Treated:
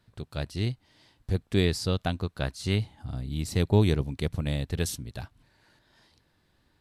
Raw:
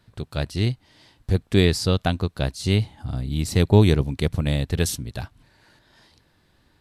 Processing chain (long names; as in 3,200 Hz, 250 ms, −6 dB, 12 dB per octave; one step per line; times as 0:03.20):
0:02.25–0:02.76: dynamic equaliser 1,400 Hz, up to +6 dB, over −46 dBFS, Q 1.1
level −6.5 dB